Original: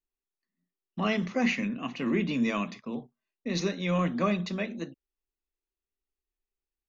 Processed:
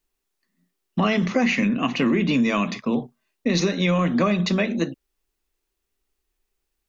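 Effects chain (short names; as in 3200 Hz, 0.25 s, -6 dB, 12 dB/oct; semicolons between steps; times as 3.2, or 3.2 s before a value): in parallel at -0.5 dB: limiter -22.5 dBFS, peak gain reduction 7 dB; on the sum: compressor, threshold -25 dBFS, peak gain reduction 7.5 dB; gain +8 dB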